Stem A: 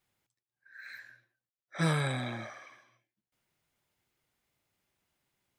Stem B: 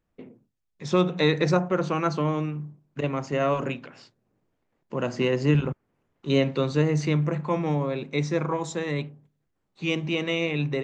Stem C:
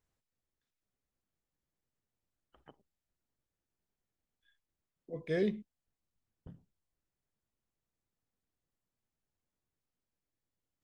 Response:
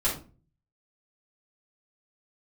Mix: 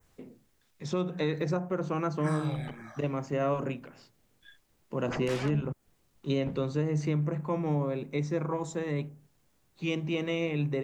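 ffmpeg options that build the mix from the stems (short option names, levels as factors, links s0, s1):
-filter_complex "[0:a]asplit=2[s0][s1];[s1]afreqshift=-1.8[s2];[s0][s2]amix=inputs=2:normalize=1,adelay=450,volume=0.841[s3];[1:a]equalizer=f=2200:w=0.35:g=-3.5,volume=0.75[s4];[2:a]acompressor=threshold=0.0158:ratio=6,aeval=exprs='0.0188*sin(PI/2*3.98*val(0)/0.0188)':c=same,volume=1.33,asplit=2[s5][s6];[s6]apad=whole_len=266031[s7];[s3][s7]sidechaincompress=threshold=0.00398:ratio=8:attack=37:release=200[s8];[s8][s4][s5]amix=inputs=3:normalize=0,adynamicequalizer=threshold=0.00126:dfrequency=3900:dqfactor=0.99:tfrequency=3900:tqfactor=0.99:attack=5:release=100:ratio=0.375:range=3:mode=cutabove:tftype=bell,alimiter=limit=0.106:level=0:latency=1:release=276"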